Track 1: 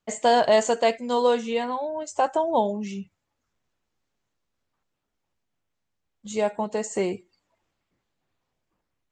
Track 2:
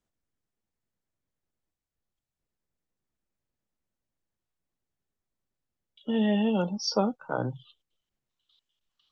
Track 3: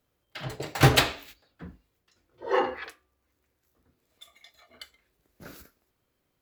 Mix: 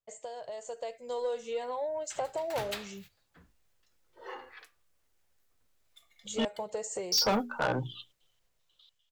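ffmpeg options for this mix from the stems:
ffmpeg -i stem1.wav -i stem2.wav -i stem3.wav -filter_complex "[0:a]equalizer=frequency=1800:width=0.34:gain=-8,acompressor=threshold=-31dB:ratio=5,equalizer=frequency=125:width_type=o:width=1:gain=10,equalizer=frequency=250:width_type=o:width=1:gain=-11,equalizer=frequency=500:width_type=o:width=1:gain=11,volume=-9.5dB[link_01];[1:a]bandreject=frequency=60:width_type=h:width=6,bandreject=frequency=120:width_type=h:width=6,bandreject=frequency=180:width_type=h:width=6,bandreject=frequency=240:width_type=h:width=6,bandreject=frequency=300:width_type=h:width=6,bandreject=frequency=360:width_type=h:width=6,bandreject=frequency=420:width_type=h:width=6,adelay=300,volume=1dB,asplit=3[link_02][link_03][link_04];[link_02]atrim=end=6.45,asetpts=PTS-STARTPTS,afade=type=out:start_time=6.446:duration=0.004:curve=hsin[link_05];[link_03]atrim=start=6.45:end=7.12,asetpts=PTS-STARTPTS,volume=0[link_06];[link_04]atrim=start=7.12,asetpts=PTS-STARTPTS,afade=type=in:duration=0.004:curve=hsin[link_07];[link_05][link_06][link_07]concat=n=3:v=0:a=1[link_08];[2:a]acompressor=threshold=-36dB:ratio=1.5,adelay=1750,volume=-19dB[link_09];[link_01][link_08][link_09]amix=inputs=3:normalize=0,equalizer=frequency=180:width=0.3:gain=-11,dynaudnorm=framelen=180:gausssize=11:maxgain=11dB,asoftclip=type=tanh:threshold=-22.5dB" out.wav

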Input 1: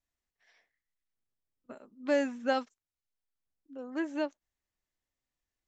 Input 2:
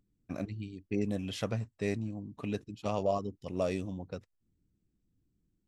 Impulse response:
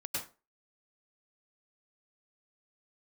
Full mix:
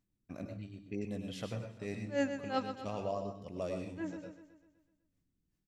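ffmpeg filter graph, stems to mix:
-filter_complex "[0:a]aeval=exprs='val(0)*pow(10,-37*(0.5-0.5*cos(2*PI*2.7*n/s))/20)':channel_layout=same,volume=0.5dB,asplit=3[link_01][link_02][link_03];[link_02]volume=-8.5dB[link_04];[1:a]volume=-10dB,asplit=3[link_05][link_06][link_07];[link_06]volume=-3.5dB[link_08];[link_07]volume=-11.5dB[link_09];[link_03]apad=whole_len=250253[link_10];[link_05][link_10]sidechaincompress=threshold=-54dB:ratio=8:attack=16:release=112[link_11];[2:a]atrim=start_sample=2205[link_12];[link_08][link_12]afir=irnorm=-1:irlink=0[link_13];[link_04][link_09]amix=inputs=2:normalize=0,aecho=0:1:125|250|375|500|625|750|875|1000:1|0.54|0.292|0.157|0.085|0.0459|0.0248|0.0134[link_14];[link_01][link_11][link_13][link_14]amix=inputs=4:normalize=0"

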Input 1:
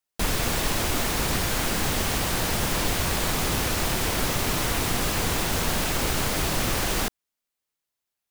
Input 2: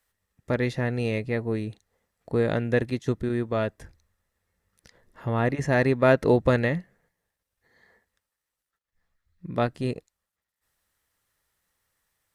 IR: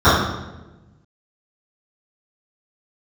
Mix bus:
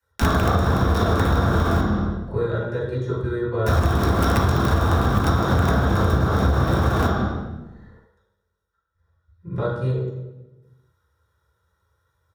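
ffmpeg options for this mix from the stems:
-filter_complex "[0:a]highshelf=frequency=2900:gain=-10.5,acrusher=bits=4:dc=4:mix=0:aa=0.000001,volume=2.5dB,asplit=3[link_01][link_02][link_03];[link_01]atrim=end=1.81,asetpts=PTS-STARTPTS,afade=type=out:start_time=1.806:duration=0.004:curve=hsin[link_04];[link_02]atrim=start=1.81:end=3.66,asetpts=PTS-STARTPTS,volume=0[link_05];[link_03]atrim=start=3.66,asetpts=PTS-STARTPTS,afade=type=in:duration=0.004:curve=hsin[link_06];[link_04][link_05][link_06]concat=n=3:v=0:a=1,asplit=2[link_07][link_08];[link_08]volume=-15dB[link_09];[1:a]aecho=1:1:2.1:0.74,acrossover=split=640|3800[link_10][link_11][link_12];[link_10]acompressor=threshold=-31dB:ratio=4[link_13];[link_11]acompressor=threshold=-36dB:ratio=4[link_14];[link_12]acompressor=threshold=-49dB:ratio=4[link_15];[link_13][link_14][link_15]amix=inputs=3:normalize=0,volume=-12dB,asplit=3[link_16][link_17][link_18];[link_17]volume=-12dB[link_19];[link_18]apad=whole_len=366140[link_20];[link_07][link_20]sidechaincompress=threshold=-42dB:ratio=8:attack=16:release=743[link_21];[2:a]atrim=start_sample=2205[link_22];[link_09][link_19]amix=inputs=2:normalize=0[link_23];[link_23][link_22]afir=irnorm=-1:irlink=0[link_24];[link_21][link_16][link_24]amix=inputs=3:normalize=0,acompressor=threshold=-15dB:ratio=10"

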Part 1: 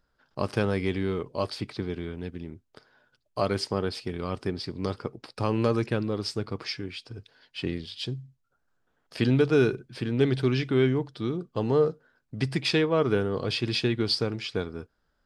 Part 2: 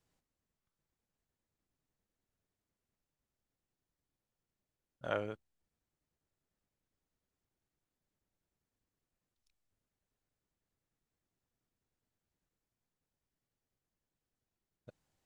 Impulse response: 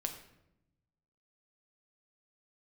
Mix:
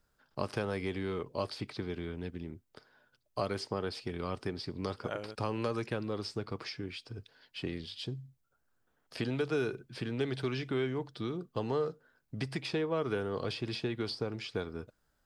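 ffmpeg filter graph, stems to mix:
-filter_complex "[0:a]acrossover=split=490|1100|7500[link_01][link_02][link_03][link_04];[link_01]acompressor=threshold=-32dB:ratio=4[link_05];[link_02]acompressor=threshold=-32dB:ratio=4[link_06];[link_03]acompressor=threshold=-38dB:ratio=4[link_07];[link_04]acompressor=threshold=-56dB:ratio=4[link_08];[link_05][link_06][link_07][link_08]amix=inputs=4:normalize=0,volume=-3dB[link_09];[1:a]highshelf=frequency=8300:gain=10.5,volume=-3.5dB[link_10];[link_09][link_10]amix=inputs=2:normalize=0"

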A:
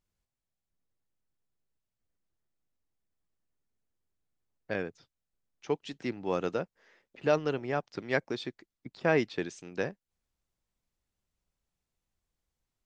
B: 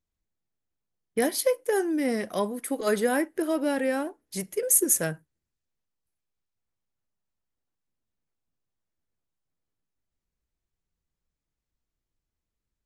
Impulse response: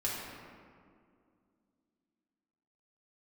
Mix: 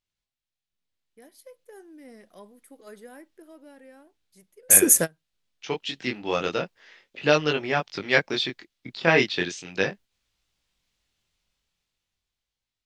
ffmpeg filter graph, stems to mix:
-filter_complex "[0:a]equalizer=frequency=3400:width_type=o:width=2:gain=12.5,flanger=delay=19.5:depth=4.7:speed=0.39,volume=-4.5dB,asplit=2[link_01][link_02];[1:a]volume=-3.5dB[link_03];[link_02]apad=whole_len=567021[link_04];[link_03][link_04]sidechaingate=range=-30dB:threshold=-57dB:ratio=16:detection=peak[link_05];[link_01][link_05]amix=inputs=2:normalize=0,dynaudnorm=framelen=340:gausssize=9:maxgain=14dB"

